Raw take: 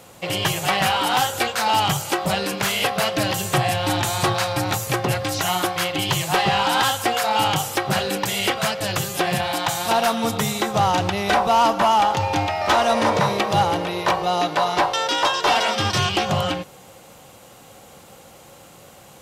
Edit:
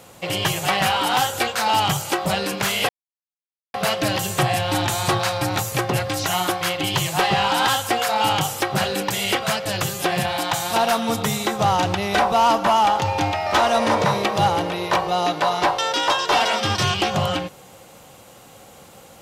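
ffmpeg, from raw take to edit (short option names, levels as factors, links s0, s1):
-filter_complex "[0:a]asplit=2[s0][s1];[s0]atrim=end=2.89,asetpts=PTS-STARTPTS,afade=t=out:st=2.886:d=0.004:c=hsin,apad=pad_dur=0.85[s2];[s1]atrim=start=2.89,asetpts=PTS-STARTPTS,afade=t=in:d=0.004:c=hsin[s3];[s2][s3]concat=n=2:v=0:a=1"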